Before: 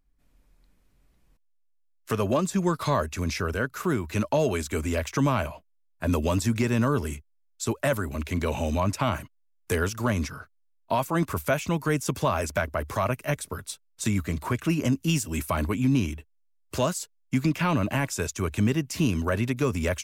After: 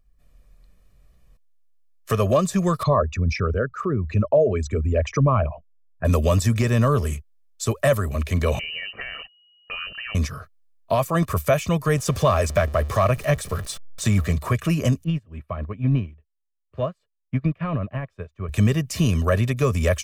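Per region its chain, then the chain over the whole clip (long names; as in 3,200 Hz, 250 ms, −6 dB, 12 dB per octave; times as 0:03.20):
0:02.83–0:06.05: spectral envelope exaggerated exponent 2 + low-pass filter 5,700 Hz
0:08.59–0:10.15: downward compressor 8 to 1, threshold −32 dBFS + voice inversion scrambler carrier 2,900 Hz
0:11.97–0:14.33: converter with a step at zero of −37 dBFS + high-shelf EQ 11,000 Hz −7.5 dB
0:15.04–0:18.49: high-frequency loss of the air 490 metres + expander for the loud parts 2.5 to 1, over −34 dBFS
whole clip: low-shelf EQ 450 Hz +3.5 dB; comb filter 1.7 ms, depth 59%; level +2 dB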